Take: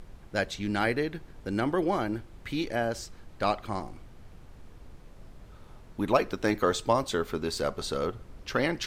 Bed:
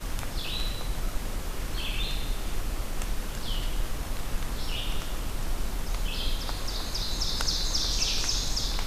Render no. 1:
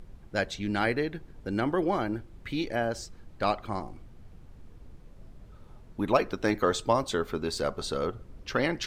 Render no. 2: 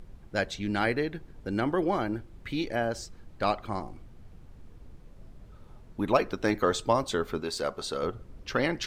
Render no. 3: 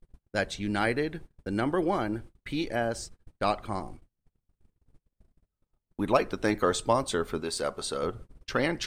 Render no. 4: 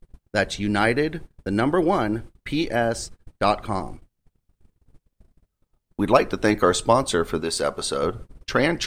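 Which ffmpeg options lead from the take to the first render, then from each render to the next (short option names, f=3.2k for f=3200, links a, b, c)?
-af "afftdn=nr=6:nf=-51"
-filter_complex "[0:a]asettb=1/sr,asplit=3[a][b][c];[a]atrim=end=7.404[d];[b]atrim=start=7.4:end=8.03,asetpts=PTS-STARTPTS,afade=t=in:d=0.004:c=qsin,afade=t=out:st=0.626:d=0.004:c=qsin,lowshelf=f=190:g=-10[e];[c]atrim=start=8.026[f];[d][e]acrossfade=d=0.004:c1=hsin:c2=qsin[g];[g][f]acrossfade=d=0.004:c1=qsin:c2=hsin"
-af "agate=range=-38dB:threshold=-42dB:ratio=16:detection=peak,equalizer=f=8.9k:w=3.6:g=9.5"
-af "volume=7dB"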